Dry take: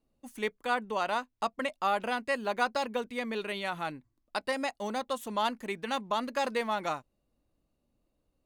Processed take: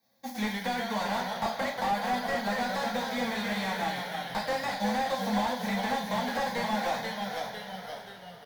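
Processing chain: formants flattened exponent 0.6; high-pass 210 Hz 12 dB/octave; waveshaping leveller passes 1; compression, threshold -35 dBFS, peak gain reduction 13.5 dB; static phaser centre 1.9 kHz, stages 8; frequency-shifting echo 399 ms, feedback 54%, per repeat -34 Hz, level -17.5 dB; reverberation, pre-delay 3 ms, DRR -2.5 dB; ever faster or slower copies 91 ms, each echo -1 st, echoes 3, each echo -6 dB; slew-rate limiter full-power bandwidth 25 Hz; trim +7 dB

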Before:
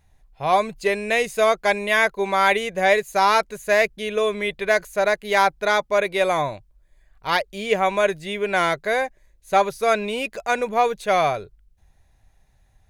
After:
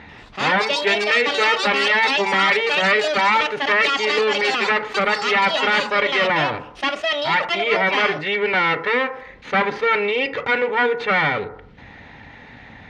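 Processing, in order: comb filter that takes the minimum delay 2.2 ms; cabinet simulation 160–3600 Hz, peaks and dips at 230 Hz +7 dB, 350 Hz -4 dB, 640 Hz -4 dB, 2 kHz +8 dB; FDN reverb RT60 0.4 s, low-frequency decay 0.9×, high-frequency decay 0.4×, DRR 12 dB; ever faster or slower copies 89 ms, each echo +6 st, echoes 2, each echo -6 dB; level flattener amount 50%

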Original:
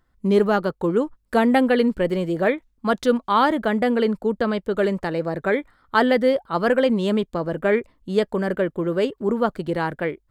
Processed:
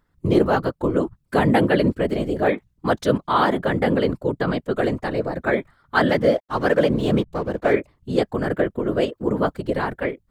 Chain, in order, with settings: 6.09–7.73 s: hysteresis with a dead band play -35.5 dBFS; whisper effect

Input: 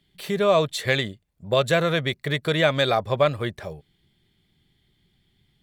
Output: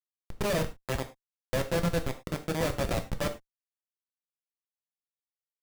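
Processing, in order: Schmitt trigger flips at -16.5 dBFS; gated-style reverb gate 130 ms falling, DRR 5.5 dB; trim -3 dB

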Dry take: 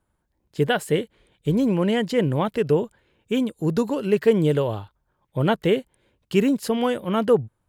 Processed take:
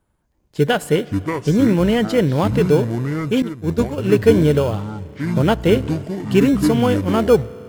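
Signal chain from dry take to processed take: spring tank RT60 4 s, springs 34 ms, chirp 50 ms, DRR 19.5 dB; in parallel at -12 dB: sample-and-hold 23×; on the sum: ever faster or slower copies 234 ms, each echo -7 st, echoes 2, each echo -6 dB; 3.42–3.98 s: expander -14 dBFS; trim +3 dB

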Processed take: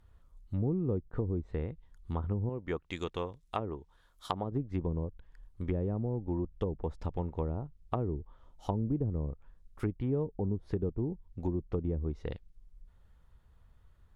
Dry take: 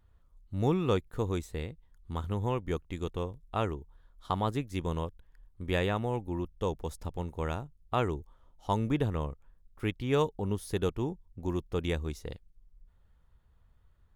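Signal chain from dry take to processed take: 2.49–4.52 s: tilt EQ +2.5 dB/octave; low-pass that closes with the level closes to 380 Hz, closed at -27.5 dBFS; compression 2.5:1, threshold -32 dBFS, peak gain reduction 6 dB; trim +3 dB

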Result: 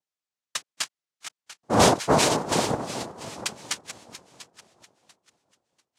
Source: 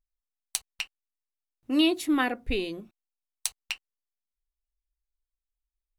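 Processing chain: backward echo that repeats 346 ms, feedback 52%, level -10 dB; noise-vocoded speech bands 2; trim +4.5 dB

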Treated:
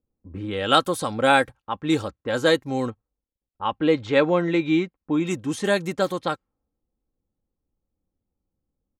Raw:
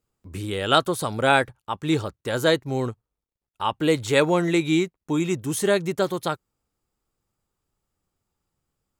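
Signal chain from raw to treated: 2.90–5.27 s: distance through air 200 m; level-controlled noise filter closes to 500 Hz, open at -19.5 dBFS; comb 3.8 ms, depth 42%

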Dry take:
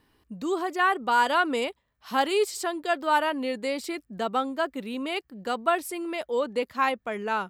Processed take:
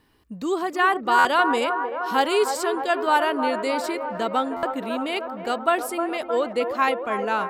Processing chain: feedback echo behind a band-pass 309 ms, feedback 70%, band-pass 740 Hz, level -6.5 dB; buffer glitch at 1.18/4.56 s, samples 512, times 5; trim +3 dB

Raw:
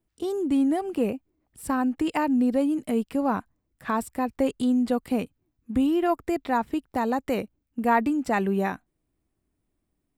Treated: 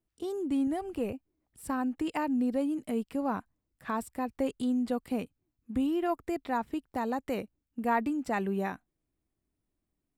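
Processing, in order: 0.67–1.13 s: resonant low shelf 120 Hz +11 dB, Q 1.5; trim -6.5 dB

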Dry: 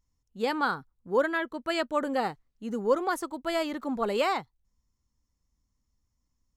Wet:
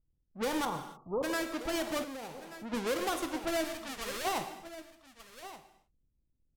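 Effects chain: square wave that keeps the level; level-controlled noise filter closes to 370 Hz, open at -24 dBFS; 0.65–1.23 s: steep low-pass 1.2 kHz 96 dB/octave; 3.64–4.25 s: peaking EQ 350 Hz -14 dB 2.9 oct; delay 1178 ms -17 dB; gated-style reverb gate 330 ms falling, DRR 8 dB; peak limiter -19 dBFS, peak gain reduction 10 dB; 2.02–2.72 s: compression 10:1, threshold -34 dBFS, peak gain reduction 11.5 dB; trim -6 dB

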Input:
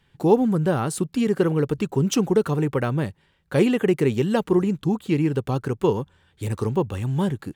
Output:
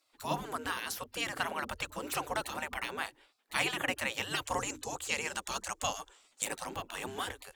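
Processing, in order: hum notches 50/100/150/200/250/300 Hz; spectral gate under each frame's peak -20 dB weak; 4.44–6.45 s: peaking EQ 7 kHz +13 dB 0.83 oct; trim +2.5 dB

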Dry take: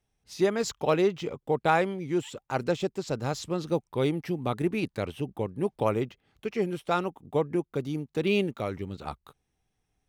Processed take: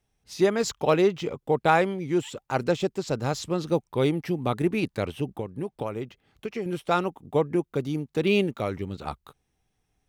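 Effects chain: 5.25–6.66 s: compression 4:1, threshold -32 dBFS, peak gain reduction 10.5 dB; trim +3 dB

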